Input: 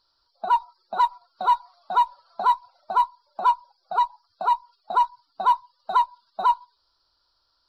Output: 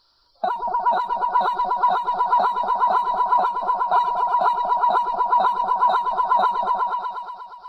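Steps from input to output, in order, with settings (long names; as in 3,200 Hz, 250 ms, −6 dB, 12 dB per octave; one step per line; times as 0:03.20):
echo whose low-pass opens from repeat to repeat 119 ms, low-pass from 400 Hz, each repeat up 1 octave, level 0 dB
downward compressor, threshold −19 dBFS, peak gain reduction 6.5 dB
every ending faded ahead of time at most 110 dB per second
level +8 dB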